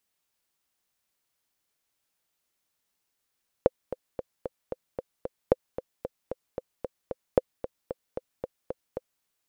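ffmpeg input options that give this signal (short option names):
-f lavfi -i "aevalsrc='pow(10,(-5-13.5*gte(mod(t,7*60/226),60/226))/20)*sin(2*PI*514*mod(t,60/226))*exp(-6.91*mod(t,60/226)/0.03)':d=5.57:s=44100"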